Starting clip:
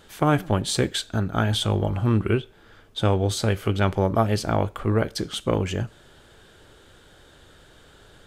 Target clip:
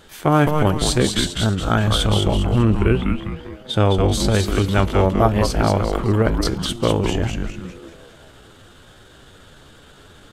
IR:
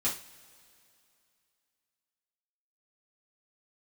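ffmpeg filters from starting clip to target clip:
-filter_complex "[0:a]asplit=7[s0][s1][s2][s3][s4][s5][s6];[s1]adelay=159,afreqshift=-150,volume=0.631[s7];[s2]adelay=318,afreqshift=-300,volume=0.285[s8];[s3]adelay=477,afreqshift=-450,volume=0.127[s9];[s4]adelay=636,afreqshift=-600,volume=0.0575[s10];[s5]adelay=795,afreqshift=-750,volume=0.026[s11];[s6]adelay=954,afreqshift=-900,volume=0.0116[s12];[s0][s7][s8][s9][s10][s11][s12]amix=inputs=7:normalize=0,atempo=0.8,volume=1.58"

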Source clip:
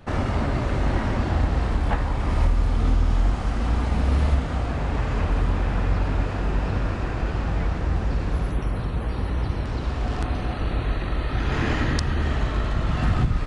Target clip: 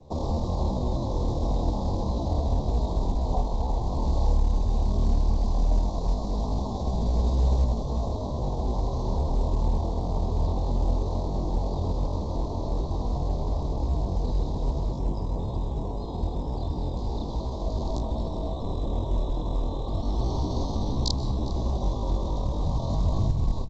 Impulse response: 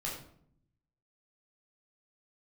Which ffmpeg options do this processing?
-filter_complex "[0:a]bandreject=f=60:t=h:w=6,bandreject=f=120:t=h:w=6,bandreject=f=180:t=h:w=6,bandreject=f=240:t=h:w=6,bandreject=f=300:t=h:w=6,atempo=0.64,adynamicequalizer=threshold=0.00501:dfrequency=2600:dqfactor=1.2:tfrequency=2600:tqfactor=1.2:attack=5:release=100:ratio=0.375:range=2:mode=boostabove:tftype=bell,acrossover=split=130|3000[s0][s1][s2];[s1]acompressor=threshold=0.0447:ratio=3[s3];[s0][s3][s2]amix=inputs=3:normalize=0,asuperstop=centerf=2200:order=12:qfactor=0.73,lowshelf=f=230:g=-2.5,aecho=1:1:358:0.106,asplit=2[s4][s5];[1:a]atrim=start_sample=2205,adelay=111[s6];[s5][s6]afir=irnorm=-1:irlink=0,volume=0.141[s7];[s4][s7]amix=inputs=2:normalize=0,asetrate=39161,aresample=44100" -ar 16000 -c:a pcm_mulaw

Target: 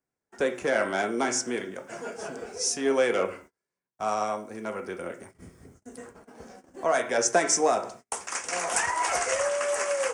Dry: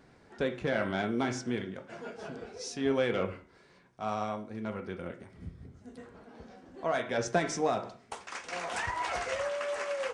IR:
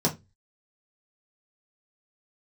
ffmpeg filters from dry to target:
-filter_complex "[0:a]agate=range=0.0178:threshold=0.00282:ratio=16:detection=peak,bass=f=250:g=-4,treble=f=4000:g=-9,acrossover=split=250|730[s0][s1][s2];[s0]acompressor=threshold=0.00158:ratio=6[s3];[s3][s1][s2]amix=inputs=3:normalize=0,aexciter=amount=9:drive=6.9:freq=5700,volume=2.11"

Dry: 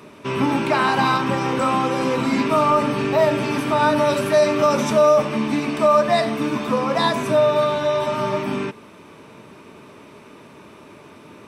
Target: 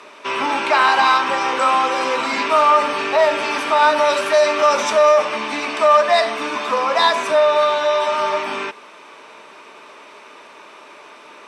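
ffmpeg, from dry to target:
-af "acontrast=77,highpass=670,lowpass=7500"

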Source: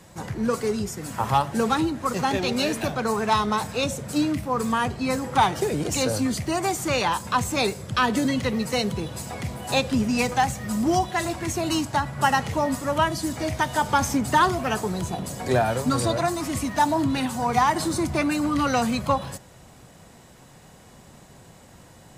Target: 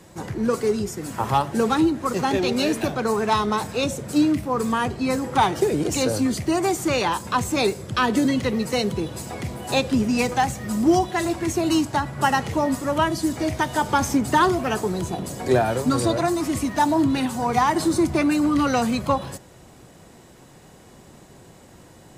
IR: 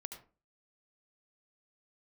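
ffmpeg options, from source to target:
-af "equalizer=f=350:w=1.9:g=6.5"

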